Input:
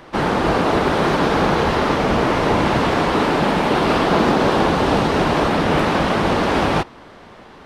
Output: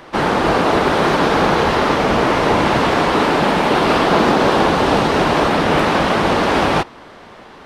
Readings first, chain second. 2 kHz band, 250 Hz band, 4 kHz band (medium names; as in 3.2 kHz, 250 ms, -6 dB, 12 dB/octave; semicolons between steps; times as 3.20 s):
+3.5 dB, +1.0 dB, +3.5 dB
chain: bass shelf 250 Hz -5 dB; trim +3.5 dB